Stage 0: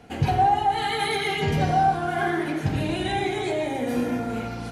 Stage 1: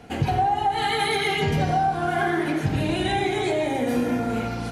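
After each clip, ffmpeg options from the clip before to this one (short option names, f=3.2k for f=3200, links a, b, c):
-af "acompressor=threshold=-22dB:ratio=6,volume=3.5dB"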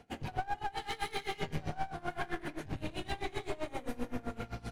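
-af "aeval=exprs='clip(val(0),-1,0.0398)':c=same,asubboost=boost=3:cutoff=96,aeval=exprs='val(0)*pow(10,-21*(0.5-0.5*cos(2*PI*7.7*n/s))/20)':c=same,volume=-8dB"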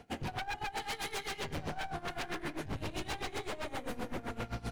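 -af "aeval=exprs='0.0211*(abs(mod(val(0)/0.0211+3,4)-2)-1)':c=same,volume=3.5dB"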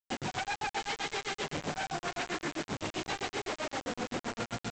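-af "highpass=140,lowpass=4.6k,aresample=16000,acrusher=bits=6:mix=0:aa=0.000001,aresample=44100,volume=3.5dB"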